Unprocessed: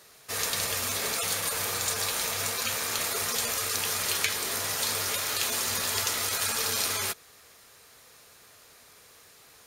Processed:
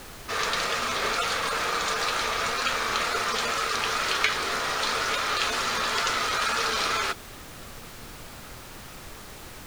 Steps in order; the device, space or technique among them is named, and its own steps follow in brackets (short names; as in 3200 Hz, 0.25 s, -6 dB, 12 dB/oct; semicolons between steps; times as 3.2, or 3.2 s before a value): horn gramophone (BPF 220–4100 Hz; bell 1300 Hz +7 dB 0.44 oct; wow and flutter; pink noise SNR 14 dB); gain +5 dB